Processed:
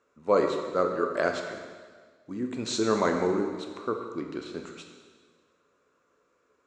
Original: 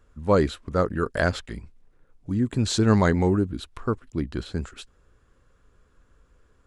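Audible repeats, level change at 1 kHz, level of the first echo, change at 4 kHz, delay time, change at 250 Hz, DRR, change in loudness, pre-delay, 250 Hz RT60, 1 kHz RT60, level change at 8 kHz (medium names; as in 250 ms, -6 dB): no echo, -1.0 dB, no echo, -4.0 dB, no echo, -6.5 dB, 3.0 dB, -4.0 dB, 5 ms, 1.7 s, 1.6 s, -3.5 dB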